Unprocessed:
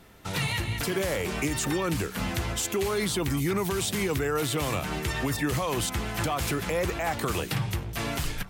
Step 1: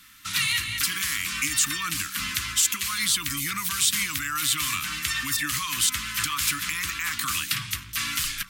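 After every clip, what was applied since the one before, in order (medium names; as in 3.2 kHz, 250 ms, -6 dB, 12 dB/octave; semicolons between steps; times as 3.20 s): elliptic band-stop 290–1100 Hz, stop band 40 dB; tilt shelf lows -10 dB, about 900 Hz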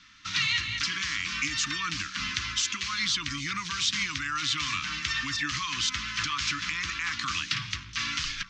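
steep low-pass 6.3 kHz 48 dB/octave; trim -1.5 dB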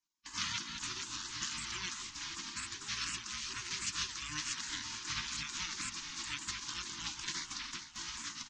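gate -38 dBFS, range -22 dB; spectral gate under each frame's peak -15 dB weak; on a send: frequency-shifting echo 448 ms, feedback 47%, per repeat -44 Hz, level -11.5 dB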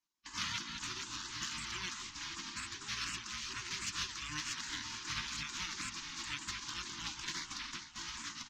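treble shelf 7.7 kHz -9 dB; in parallel at -8 dB: one-sided clip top -41 dBFS; on the sum: trim -2 dB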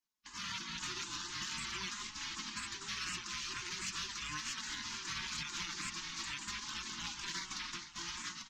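peak limiter -31 dBFS, peak gain reduction 6 dB; level rider gain up to 4 dB; flange 0.44 Hz, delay 4.5 ms, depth 1.4 ms, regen +38%; trim +1 dB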